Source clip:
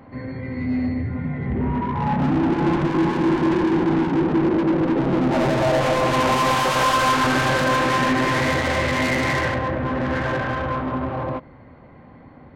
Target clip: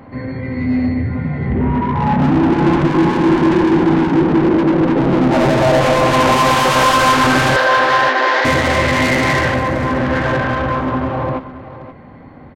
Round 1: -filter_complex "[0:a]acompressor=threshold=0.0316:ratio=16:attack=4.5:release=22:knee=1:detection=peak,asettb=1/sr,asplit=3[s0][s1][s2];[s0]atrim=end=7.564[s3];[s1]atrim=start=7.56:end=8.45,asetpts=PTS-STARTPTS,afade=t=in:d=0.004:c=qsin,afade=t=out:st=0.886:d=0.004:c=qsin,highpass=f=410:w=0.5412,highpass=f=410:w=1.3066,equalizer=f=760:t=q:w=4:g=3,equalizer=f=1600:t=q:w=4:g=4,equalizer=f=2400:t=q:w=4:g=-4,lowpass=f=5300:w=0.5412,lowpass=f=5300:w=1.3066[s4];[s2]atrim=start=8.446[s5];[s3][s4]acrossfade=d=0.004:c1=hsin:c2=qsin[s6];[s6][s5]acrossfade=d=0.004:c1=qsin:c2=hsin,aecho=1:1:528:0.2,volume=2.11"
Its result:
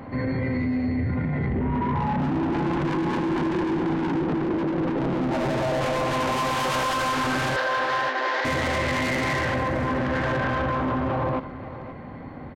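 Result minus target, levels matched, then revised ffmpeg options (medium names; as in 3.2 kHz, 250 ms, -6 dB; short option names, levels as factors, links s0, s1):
compression: peak gain reduction +14 dB
-filter_complex "[0:a]asettb=1/sr,asplit=3[s0][s1][s2];[s0]atrim=end=7.564[s3];[s1]atrim=start=7.56:end=8.45,asetpts=PTS-STARTPTS,afade=t=in:d=0.004:c=qsin,afade=t=out:st=0.886:d=0.004:c=qsin,highpass=f=410:w=0.5412,highpass=f=410:w=1.3066,equalizer=f=760:t=q:w=4:g=3,equalizer=f=1600:t=q:w=4:g=4,equalizer=f=2400:t=q:w=4:g=-4,lowpass=f=5300:w=0.5412,lowpass=f=5300:w=1.3066[s4];[s2]atrim=start=8.446[s5];[s3][s4]acrossfade=d=0.004:c1=hsin:c2=qsin[s6];[s6][s5]acrossfade=d=0.004:c1=qsin:c2=hsin,aecho=1:1:528:0.2,volume=2.11"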